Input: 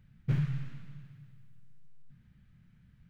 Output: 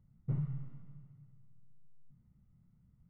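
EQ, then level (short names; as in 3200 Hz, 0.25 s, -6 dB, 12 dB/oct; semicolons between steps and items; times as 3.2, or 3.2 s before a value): polynomial smoothing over 65 samples; -5.5 dB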